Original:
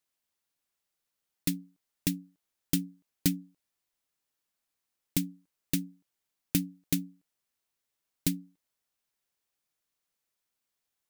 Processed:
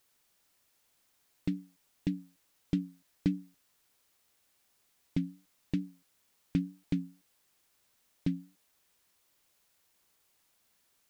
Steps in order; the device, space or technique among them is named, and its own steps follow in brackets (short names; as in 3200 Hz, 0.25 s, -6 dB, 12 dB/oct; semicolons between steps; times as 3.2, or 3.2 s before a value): cassette deck with a dirty head (tape spacing loss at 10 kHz 39 dB; wow and flutter; white noise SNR 32 dB)